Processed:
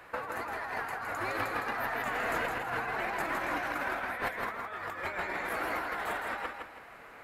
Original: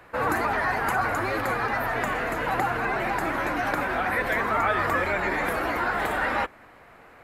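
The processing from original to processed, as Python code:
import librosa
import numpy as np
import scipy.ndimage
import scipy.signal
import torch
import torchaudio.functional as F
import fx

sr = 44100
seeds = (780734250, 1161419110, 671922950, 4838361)

p1 = fx.low_shelf(x, sr, hz=420.0, db=-8.0)
p2 = fx.over_compress(p1, sr, threshold_db=-31.0, ratio=-0.5)
p3 = p2 + fx.echo_feedback(p2, sr, ms=162, feedback_pct=32, wet_db=-5.0, dry=0)
y = F.gain(torch.from_numpy(p3), -4.0).numpy()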